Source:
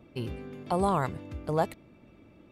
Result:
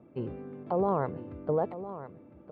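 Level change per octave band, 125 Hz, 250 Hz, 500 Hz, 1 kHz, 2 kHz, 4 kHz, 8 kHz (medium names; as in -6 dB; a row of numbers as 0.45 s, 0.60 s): -3.5 dB, -1.5 dB, +1.5 dB, -3.0 dB, -8.5 dB, under -15 dB, under -30 dB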